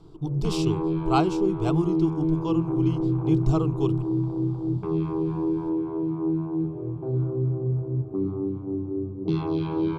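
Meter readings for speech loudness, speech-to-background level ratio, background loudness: -28.5 LUFS, -1.5 dB, -27.0 LUFS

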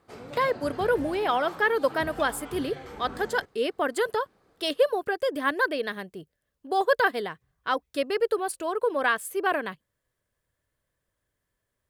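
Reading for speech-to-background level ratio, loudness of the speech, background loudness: 14.0 dB, -27.0 LUFS, -41.0 LUFS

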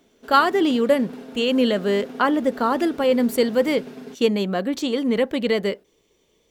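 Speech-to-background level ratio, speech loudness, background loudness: 17.5 dB, -21.0 LUFS, -38.5 LUFS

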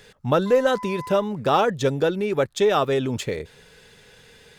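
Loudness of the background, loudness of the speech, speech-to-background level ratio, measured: -38.0 LUFS, -22.0 LUFS, 16.0 dB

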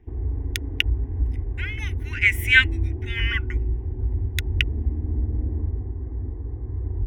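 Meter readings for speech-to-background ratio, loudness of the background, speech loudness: 6.0 dB, -28.5 LUFS, -22.5 LUFS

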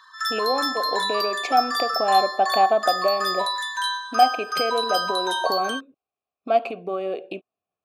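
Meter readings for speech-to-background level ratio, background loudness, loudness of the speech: 0.5 dB, -25.0 LUFS, -24.5 LUFS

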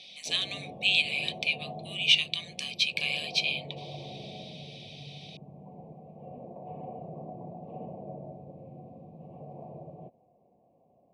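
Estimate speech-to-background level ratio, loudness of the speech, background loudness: 17.5 dB, -27.5 LUFS, -45.0 LUFS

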